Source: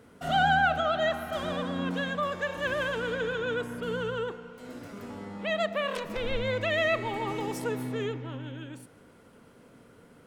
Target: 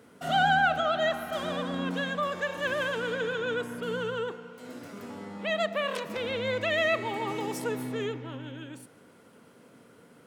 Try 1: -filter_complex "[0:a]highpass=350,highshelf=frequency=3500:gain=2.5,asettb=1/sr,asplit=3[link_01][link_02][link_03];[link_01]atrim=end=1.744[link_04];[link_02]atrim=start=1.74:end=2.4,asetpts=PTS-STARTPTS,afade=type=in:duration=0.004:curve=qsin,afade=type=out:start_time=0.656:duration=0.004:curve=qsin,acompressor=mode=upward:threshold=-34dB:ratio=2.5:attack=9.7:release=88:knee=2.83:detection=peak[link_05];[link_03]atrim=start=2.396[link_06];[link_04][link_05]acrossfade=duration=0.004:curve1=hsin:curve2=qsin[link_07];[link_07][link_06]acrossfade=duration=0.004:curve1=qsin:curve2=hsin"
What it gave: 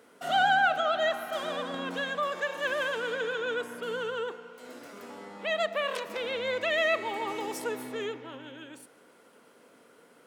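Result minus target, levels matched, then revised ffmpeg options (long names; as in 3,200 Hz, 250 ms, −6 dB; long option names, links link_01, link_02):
125 Hz band −12.0 dB
-filter_complex "[0:a]highpass=130,highshelf=frequency=3500:gain=2.5,asettb=1/sr,asplit=3[link_01][link_02][link_03];[link_01]atrim=end=1.744[link_04];[link_02]atrim=start=1.74:end=2.4,asetpts=PTS-STARTPTS,afade=type=in:duration=0.004:curve=qsin,afade=type=out:start_time=0.656:duration=0.004:curve=qsin,acompressor=mode=upward:threshold=-34dB:ratio=2.5:attack=9.7:release=88:knee=2.83:detection=peak[link_05];[link_03]atrim=start=2.396[link_06];[link_04][link_05]acrossfade=duration=0.004:curve1=hsin:curve2=qsin[link_07];[link_07][link_06]acrossfade=duration=0.004:curve1=qsin:curve2=hsin"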